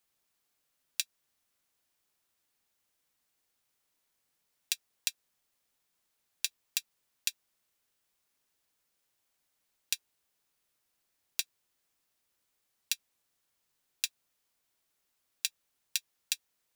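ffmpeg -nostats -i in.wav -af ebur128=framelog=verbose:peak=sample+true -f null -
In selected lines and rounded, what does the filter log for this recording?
Integrated loudness:
  I:         -36.8 LUFS
  Threshold: -47.1 LUFS
Loudness range:
  LRA:         6.0 LU
  Threshold: -61.9 LUFS
  LRA low:   -45.6 LUFS
  LRA high:  -39.6 LUFS
Sample peak:
  Peak:       -5.5 dBFS
True peak:
  Peak:       -5.5 dBFS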